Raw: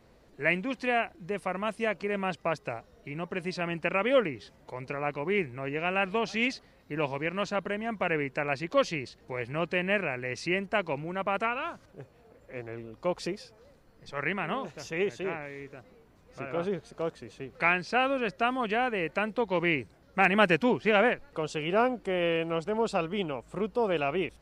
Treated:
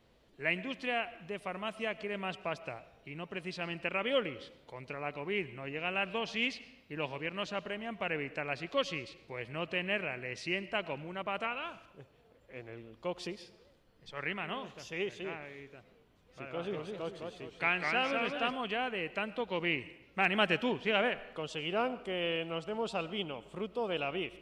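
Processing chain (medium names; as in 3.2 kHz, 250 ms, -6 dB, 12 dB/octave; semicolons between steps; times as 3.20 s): peaking EQ 3.2 kHz +9.5 dB 0.57 oct; reverberation RT60 0.90 s, pre-delay 60 ms, DRR 16.5 dB; 16.44–18.56 s: modulated delay 204 ms, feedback 40%, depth 178 cents, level -4 dB; trim -7.5 dB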